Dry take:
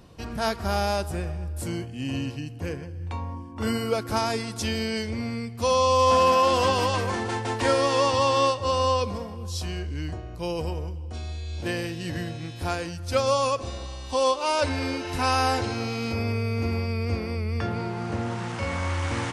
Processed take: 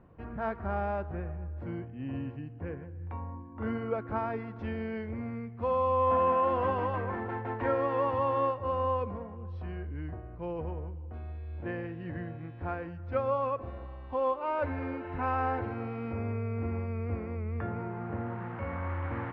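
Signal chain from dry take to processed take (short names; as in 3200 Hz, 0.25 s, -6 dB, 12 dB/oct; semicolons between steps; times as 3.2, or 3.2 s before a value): LPF 1900 Hz 24 dB/oct; gain -6.5 dB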